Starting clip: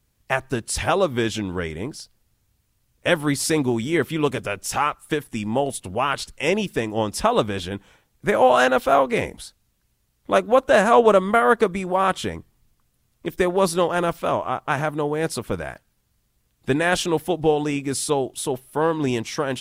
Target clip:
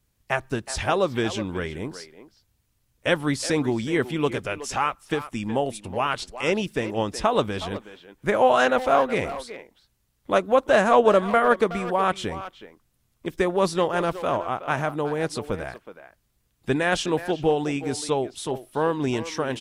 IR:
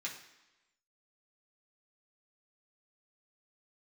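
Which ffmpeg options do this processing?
-filter_complex "[0:a]acrossover=split=9000[a][b];[b]acompressor=threshold=-57dB:ratio=4:attack=1:release=60[c];[a][c]amix=inputs=2:normalize=0,asplit=2[d][e];[e]adelay=370,highpass=300,lowpass=3.4k,asoftclip=type=hard:threshold=-13dB,volume=-12dB[f];[d][f]amix=inputs=2:normalize=0,volume=-2.5dB"

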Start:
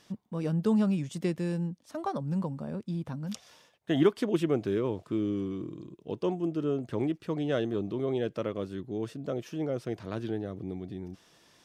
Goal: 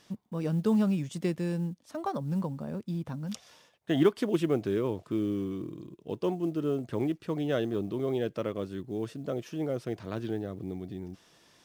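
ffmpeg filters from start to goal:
-af "acrusher=bits=9:mode=log:mix=0:aa=0.000001"

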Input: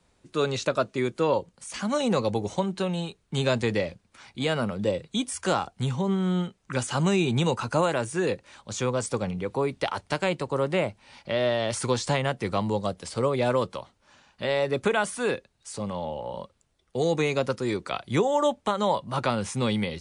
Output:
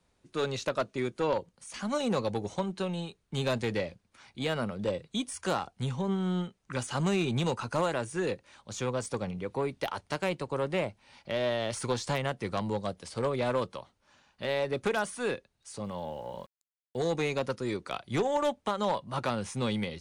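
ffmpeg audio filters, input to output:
-filter_complex "[0:a]aeval=exprs='0.251*(cos(1*acos(clip(val(0)/0.251,-1,1)))-cos(1*PI/2))+0.0355*(cos(4*acos(clip(val(0)/0.251,-1,1)))-cos(4*PI/2))+0.0251*(cos(5*acos(clip(val(0)/0.251,-1,1)))-cos(5*PI/2))+0.0224*(cos(6*acos(clip(val(0)/0.251,-1,1)))-cos(6*PI/2))+0.0178*(cos(7*acos(clip(val(0)/0.251,-1,1)))-cos(7*PI/2))':c=same,bandreject=f=7.6k:w=17,asettb=1/sr,asplit=3[a][b][c];[a]atrim=end=15.844[d];[b]atrim=start=15.84:end=17.02,asetpts=PTS-STARTPTS,afade=t=in:d=0.004:c=qsin,afade=t=out:st=1.176:d=0.004:c=qsin,aeval=exprs='val(0)*gte(abs(val(0)),0.00282)':c=same[e];[c]atrim=start=17.016[f];[d][e]acrossfade=d=0.004:c1=hsin:c2=qsin[g];[g][f]acrossfade=d=0.004:c1=qsin:c2=hsin,volume=-6dB"

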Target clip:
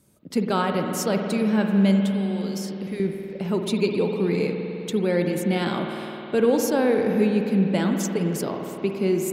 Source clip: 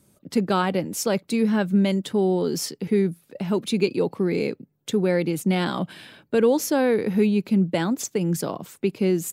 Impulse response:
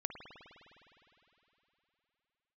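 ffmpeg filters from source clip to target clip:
-filter_complex "[0:a]asettb=1/sr,asplit=3[a][b][c];[a]atrim=end=2.034[d];[b]atrim=start=2.03:end=3,asetpts=PTS-STARTPTS,afade=t=in:d=0.004:c=qsin,afade=t=out:st=0.966:d=0.004:c=qsin,acrossover=split=1600|7300[e][f][g];[e]acompressor=threshold=-31dB:ratio=4[h];[f]acompressor=threshold=-38dB:ratio=4[i];[g]acompressor=threshold=-43dB:ratio=4[j];[h][i][j]amix=inputs=3:normalize=0[k];[c]atrim=start=2.996[l];[d][k]acrossfade=d=0.004:c1=hsin:c2=qsin[m];[m][l]acrossfade=d=0.004:c1=qsin:c2=hsin[n];[1:a]atrim=start_sample=2205[o];[n][o]afir=irnorm=-1:irlink=0"

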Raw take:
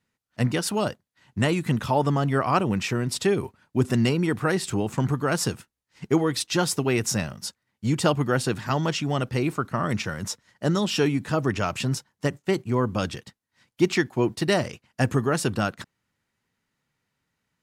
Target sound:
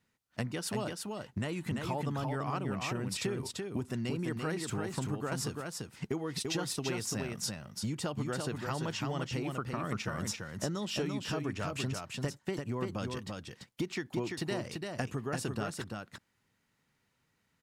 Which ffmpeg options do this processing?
-filter_complex "[0:a]acompressor=threshold=-33dB:ratio=8,asplit=2[a][b];[b]aecho=0:1:340:0.631[c];[a][c]amix=inputs=2:normalize=0"

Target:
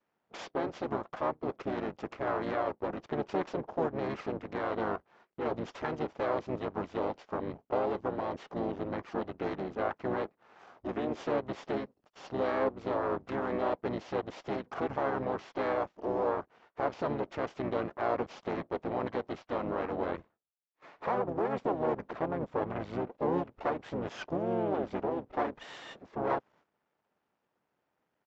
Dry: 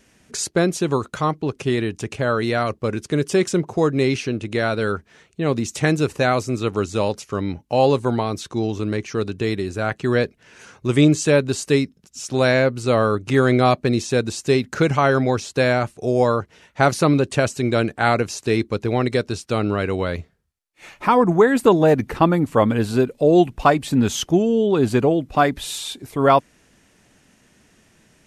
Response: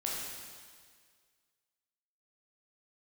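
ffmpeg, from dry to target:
-filter_complex "[0:a]aresample=16000,aeval=exprs='max(val(0),0)':c=same,aresample=44100,alimiter=limit=-13dB:level=0:latency=1:release=196,asplit=3[a][b][c];[b]asetrate=22050,aresample=44100,atempo=2,volume=-1dB[d];[c]asetrate=35002,aresample=44100,atempo=1.25992,volume=-1dB[e];[a][d][e]amix=inputs=3:normalize=0,bandpass=f=700:t=q:w=0.94:csg=0,agate=range=-12dB:threshold=-56dB:ratio=16:detection=peak,volume=-5dB"

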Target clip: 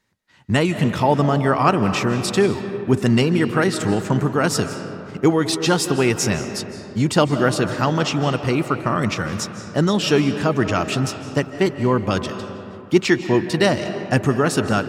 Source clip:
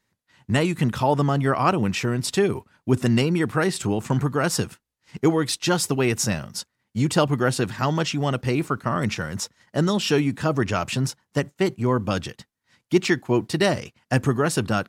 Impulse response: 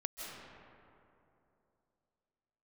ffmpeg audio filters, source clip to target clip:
-filter_complex "[0:a]asplit=2[a][b];[b]equalizer=f=130:t=o:w=0.32:g=-8.5[c];[1:a]atrim=start_sample=2205,lowpass=8.8k[d];[c][d]afir=irnorm=-1:irlink=0,volume=-3.5dB[e];[a][e]amix=inputs=2:normalize=0"

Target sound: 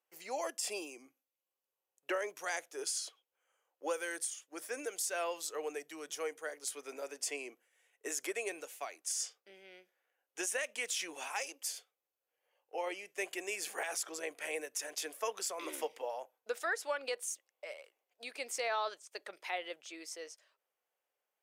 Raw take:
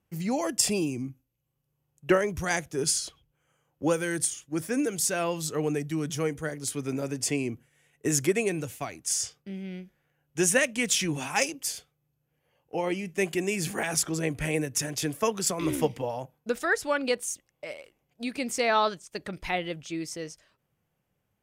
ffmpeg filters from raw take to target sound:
-af "highpass=f=460:w=0.5412,highpass=f=460:w=1.3066,alimiter=limit=-19dB:level=0:latency=1:release=90,volume=-6.5dB"

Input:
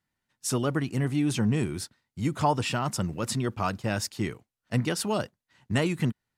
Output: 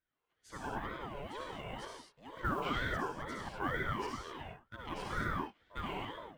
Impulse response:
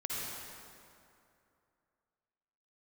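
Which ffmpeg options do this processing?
-filter_complex "[0:a]areverse,acompressor=threshold=-32dB:ratio=6,areverse,asplit=3[a][b][c];[a]bandpass=f=730:t=q:w=8,volume=0dB[d];[b]bandpass=f=1.09k:t=q:w=8,volume=-6dB[e];[c]bandpass=f=2.44k:t=q:w=8,volume=-9dB[f];[d][e][f]amix=inputs=3:normalize=0,acrusher=bits=8:mode=log:mix=0:aa=0.000001[g];[1:a]atrim=start_sample=2205,afade=t=out:st=0.31:d=0.01,atrim=end_sample=14112[h];[g][h]afir=irnorm=-1:irlink=0,aeval=exprs='val(0)*sin(2*PI*540*n/s+540*0.5/2.1*sin(2*PI*2.1*n/s))':c=same,volume=12.5dB"

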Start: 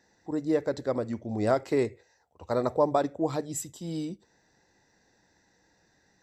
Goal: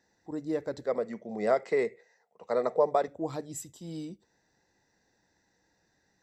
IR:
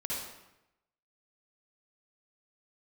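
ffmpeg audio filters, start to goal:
-filter_complex "[0:a]asettb=1/sr,asplit=3[a][b][c];[a]atrim=end=0.864[d];[b]atrim=start=0.86:end=3.08,asetpts=PTS-STARTPTS,afade=t=in:d=0.004:c=qsin,afade=t=out:st=2.216:d=0.004:c=qsin,highpass=f=170:w=0.5412,highpass=f=170:w=1.3066,equalizer=f=190:t=q:w=4:g=7,equalizer=f=290:t=q:w=4:g=-10,equalizer=f=460:t=q:w=4:g=9,equalizer=f=680:t=q:w=4:g=5,equalizer=f=1.2k:t=q:w=4:g=4,equalizer=f=2k:t=q:w=4:g=10,lowpass=f=8.8k:w=0.5412,lowpass=f=8.8k:w=1.3066[e];[c]atrim=start=3.076[f];[d][e]acrossfade=d=0.004:c1=hsin:c2=qsin[g];[g][f]acrossfade=d=0.004:c1=qsin:c2=hsin,volume=-5.5dB"

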